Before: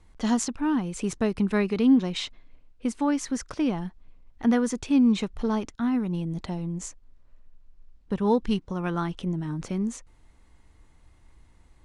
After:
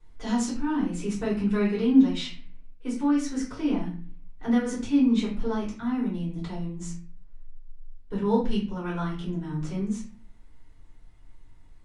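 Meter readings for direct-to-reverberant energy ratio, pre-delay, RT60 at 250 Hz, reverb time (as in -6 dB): -9.5 dB, 3 ms, 0.60 s, 0.40 s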